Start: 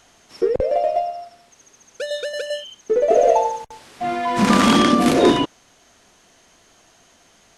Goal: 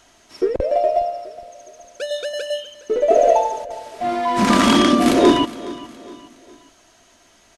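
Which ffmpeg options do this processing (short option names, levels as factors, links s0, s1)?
-filter_complex "[0:a]aecho=1:1:3.1:0.37,asplit=2[s0][s1];[s1]aecho=0:1:415|830|1245:0.126|0.0516|0.0212[s2];[s0][s2]amix=inputs=2:normalize=0"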